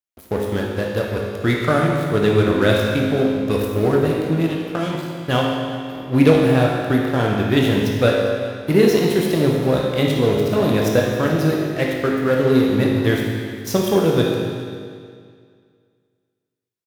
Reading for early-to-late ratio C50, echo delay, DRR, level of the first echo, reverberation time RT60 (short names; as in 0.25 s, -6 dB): 0.5 dB, 0.403 s, -2.0 dB, -17.0 dB, 2.1 s